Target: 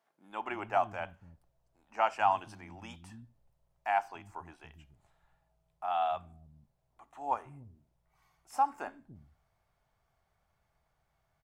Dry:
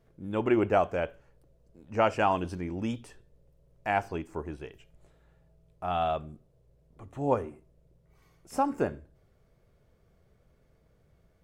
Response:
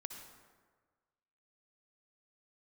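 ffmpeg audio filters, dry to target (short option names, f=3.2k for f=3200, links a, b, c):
-filter_complex "[0:a]lowshelf=f=620:t=q:w=3:g=-8,acrossover=split=230[a][b];[a]adelay=290[c];[c][b]amix=inputs=2:normalize=0,volume=-5dB"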